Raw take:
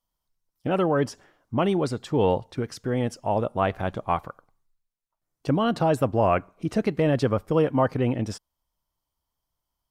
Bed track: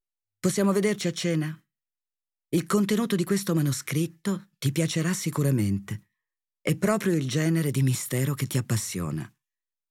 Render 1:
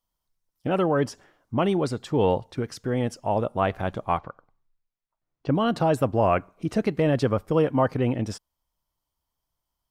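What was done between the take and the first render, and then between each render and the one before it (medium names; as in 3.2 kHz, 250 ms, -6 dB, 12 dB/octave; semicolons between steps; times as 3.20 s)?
4.18–5.55 s: distance through air 190 m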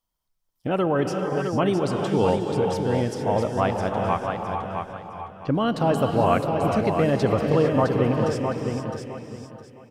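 feedback delay 661 ms, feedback 26%, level -6 dB; gated-style reverb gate 480 ms rising, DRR 4 dB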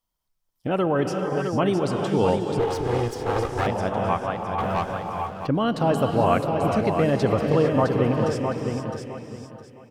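2.59–3.67 s: comb filter that takes the minimum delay 2.4 ms; 4.58–5.47 s: waveshaping leveller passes 2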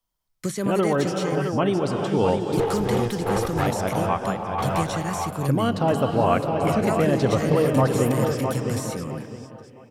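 add bed track -3.5 dB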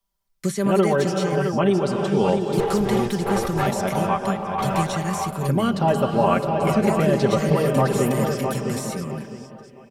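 comb 5.1 ms, depth 64%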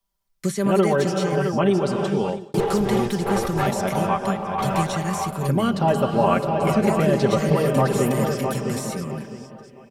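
2.05–2.54 s: fade out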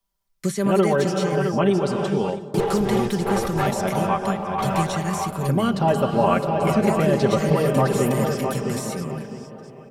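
feedback echo behind a low-pass 309 ms, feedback 76%, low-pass 990 Hz, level -19.5 dB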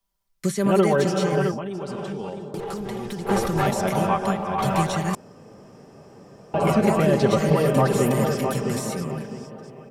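1.51–3.29 s: compression 8:1, threshold -27 dBFS; 5.15–6.54 s: room tone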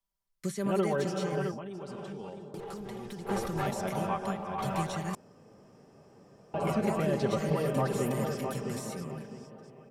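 trim -10 dB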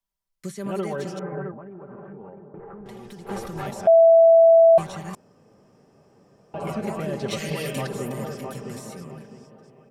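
1.19–2.86 s: steep low-pass 1.9 kHz; 3.87–4.78 s: bleep 661 Hz -9.5 dBFS; 7.28–7.87 s: resonant high shelf 1.7 kHz +10 dB, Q 1.5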